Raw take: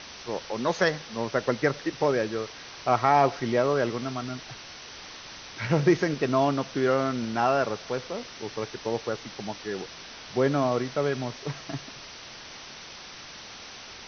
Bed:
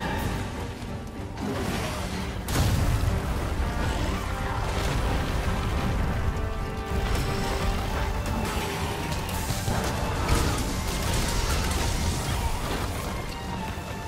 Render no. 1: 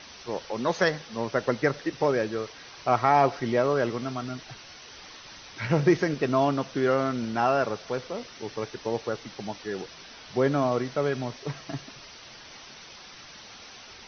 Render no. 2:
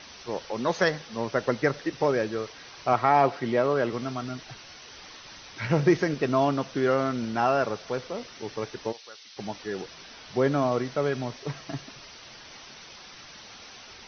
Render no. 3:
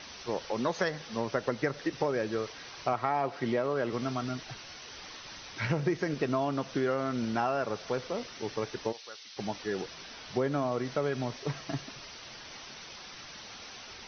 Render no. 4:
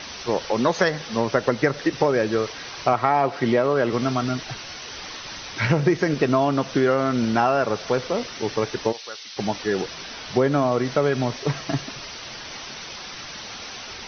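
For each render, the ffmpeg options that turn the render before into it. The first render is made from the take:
-af "afftdn=nr=6:nf=-44"
-filter_complex "[0:a]asettb=1/sr,asplit=3[a][b][c];[a]atrim=end=2.934[d];[b]atrim=start=2.93:end=3.93,asetpts=PTS-STARTPTS,afade=t=in:d=0.004:c=qsin,afade=t=out:st=0.996:d=0.004:c=qsin,highpass=110,lowpass=5.1k[e];[c]atrim=start=3.926[f];[d][e]acrossfade=d=0.004:c1=hsin:c2=qsin[g];[g][f]acrossfade=d=0.004:c1=qsin:c2=hsin,asplit=3[h][i][j];[h]afade=t=out:st=8.91:d=0.02[k];[i]bandpass=f=4.4k:t=q:w=1.1,afade=t=in:st=8.91:d=0.02,afade=t=out:st=9.36:d=0.02[l];[j]afade=t=in:st=9.36:d=0.02[m];[k][l][m]amix=inputs=3:normalize=0"
-af "acompressor=threshold=-26dB:ratio=5"
-af "volume=10dB"

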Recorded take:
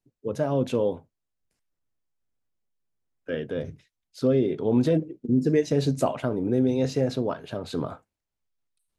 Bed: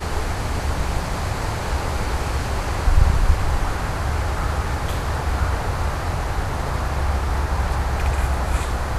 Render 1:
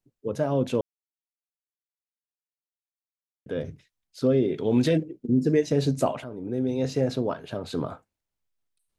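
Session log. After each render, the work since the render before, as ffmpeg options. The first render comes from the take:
-filter_complex "[0:a]asettb=1/sr,asplit=3[a][b][c];[a]atrim=end=4.544[d];[b]atrim=start=4.54:end=5.03,asetpts=PTS-STARTPTS,afade=t=in:d=0.004:c=qsin,afade=t=out:st=0.486:d=0.004:c=qsin,highshelf=f=1.5k:t=q:w=1.5:g=6.5[e];[c]atrim=start=5.026[f];[d][e]acrossfade=d=0.004:c1=hsin:c2=qsin[g];[g][f]acrossfade=d=0.004:c1=qsin:c2=hsin,asplit=4[h][i][j][k];[h]atrim=end=0.81,asetpts=PTS-STARTPTS,afade=t=out:st=0.806:d=0.004:c=hsin[l];[i]atrim=start=0.81:end=3.46,asetpts=PTS-STARTPTS,volume=0[m];[j]atrim=start=3.46:end=6.24,asetpts=PTS-STARTPTS,afade=t=in:d=0.004:c=hsin,afade=t=out:st=2.776:d=0.004:c=hsin:silence=0.223872[n];[k]atrim=start=6.24,asetpts=PTS-STARTPTS,afade=t=in:d=0.79:silence=0.223872[o];[l][m][n][o]concat=n=4:v=0:a=1"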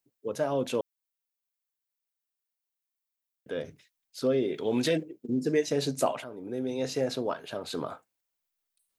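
-af "lowpass=f=2.7k:p=1,aemphasis=mode=production:type=riaa"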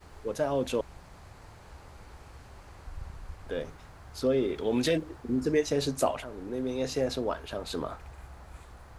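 -filter_complex "[1:a]volume=-26dB[a];[0:a][a]amix=inputs=2:normalize=0"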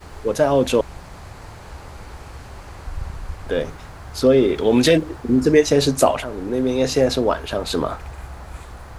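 -af "volume=12dB,alimiter=limit=-2dB:level=0:latency=1"

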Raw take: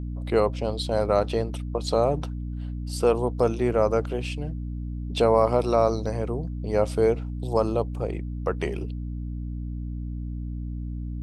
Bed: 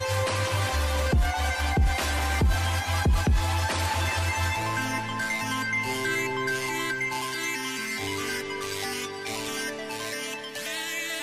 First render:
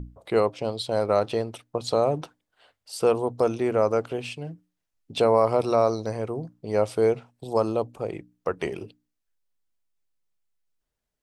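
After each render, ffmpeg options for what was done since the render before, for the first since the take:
-af "bandreject=f=60:t=h:w=6,bandreject=f=120:t=h:w=6,bandreject=f=180:t=h:w=6,bandreject=f=240:t=h:w=6,bandreject=f=300:t=h:w=6"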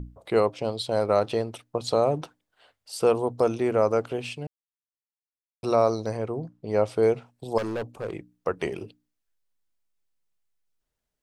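-filter_complex "[0:a]asettb=1/sr,asplit=3[a][b][c];[a]atrim=end=6.174[d];[b]atrim=start=6.17:end=7.03,asetpts=PTS-STARTPTS,afade=t=in:d=0.004:c=qsin,afade=t=out:st=0.856:d=0.004:c=qsin,highshelf=f=6.5k:g=-10[e];[c]atrim=start=7.026[f];[d][e]acrossfade=d=0.004:c1=hsin:c2=qsin[g];[g][f]acrossfade=d=0.004:c1=qsin:c2=hsin,asettb=1/sr,asplit=3[h][i][j];[h]atrim=end=7.584[k];[i]atrim=start=7.58:end=8.15,asetpts=PTS-STARTPTS,afade=t=in:d=0.004:c=qsin,afade=t=out:st=0.566:d=0.004:c=qsin,asoftclip=type=hard:threshold=-26.5dB[l];[j]atrim=start=8.146[m];[k][l]acrossfade=d=0.004:c1=hsin:c2=qsin[n];[n][m]acrossfade=d=0.004:c1=qsin:c2=hsin,asplit=3[o][p][q];[o]atrim=end=4.47,asetpts=PTS-STARTPTS,afade=t=out:st=4.466:d=0.004:c=hsin[r];[p]atrim=start=4.47:end=5.63,asetpts=PTS-STARTPTS,volume=0[s];[q]atrim=start=5.63,asetpts=PTS-STARTPTS,afade=t=in:d=0.004:c=hsin[t];[r][s][t]concat=n=3:v=0:a=1"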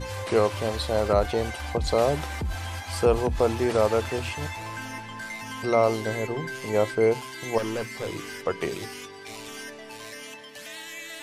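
-filter_complex "[1:a]volume=-7.5dB[a];[0:a][a]amix=inputs=2:normalize=0"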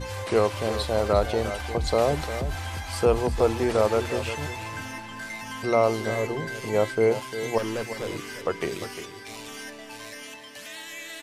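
-af "aecho=1:1:351:0.266"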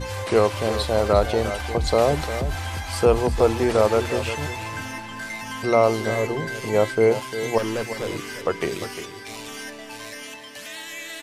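-af "volume=3.5dB"

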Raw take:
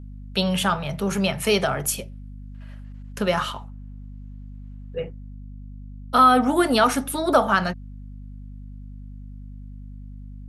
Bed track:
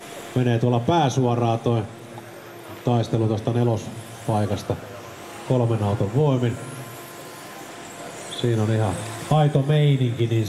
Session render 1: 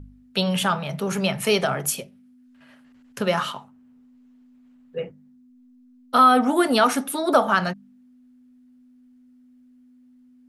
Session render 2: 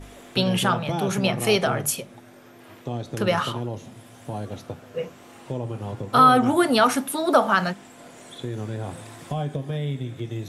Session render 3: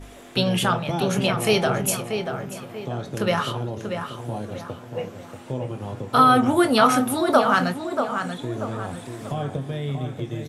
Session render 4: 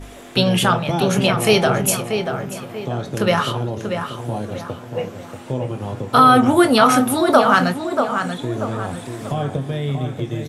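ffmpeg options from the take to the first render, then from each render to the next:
-af "bandreject=f=50:t=h:w=4,bandreject=f=100:t=h:w=4,bandreject=f=150:t=h:w=4,bandreject=f=200:t=h:w=4"
-filter_complex "[1:a]volume=-10dB[a];[0:a][a]amix=inputs=2:normalize=0"
-filter_complex "[0:a]asplit=2[a][b];[b]adelay=23,volume=-11.5dB[c];[a][c]amix=inputs=2:normalize=0,asplit=2[d][e];[e]adelay=636,lowpass=f=2.6k:p=1,volume=-6.5dB,asplit=2[f][g];[g]adelay=636,lowpass=f=2.6k:p=1,volume=0.41,asplit=2[h][i];[i]adelay=636,lowpass=f=2.6k:p=1,volume=0.41,asplit=2[j][k];[k]adelay=636,lowpass=f=2.6k:p=1,volume=0.41,asplit=2[l][m];[m]adelay=636,lowpass=f=2.6k:p=1,volume=0.41[n];[d][f][h][j][l][n]amix=inputs=6:normalize=0"
-af "volume=5dB,alimiter=limit=-2dB:level=0:latency=1"

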